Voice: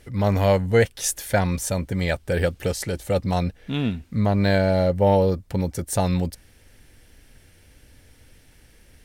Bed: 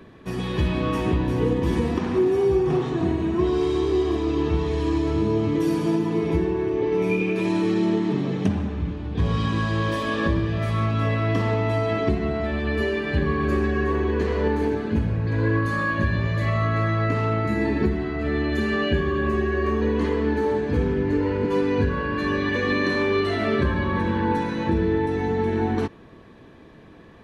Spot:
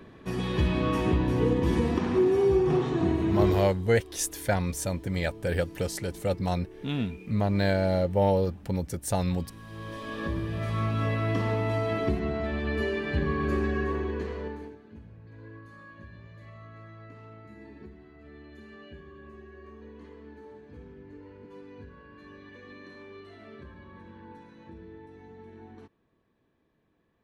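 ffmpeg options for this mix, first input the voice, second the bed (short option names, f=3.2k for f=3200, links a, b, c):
-filter_complex "[0:a]adelay=3150,volume=-5.5dB[a];[1:a]volume=16dB,afade=t=out:st=3.47:d=0.28:silence=0.0891251,afade=t=in:st=9.6:d=1.27:silence=0.11885,afade=t=out:st=13.72:d=1.05:silence=0.1[b];[a][b]amix=inputs=2:normalize=0"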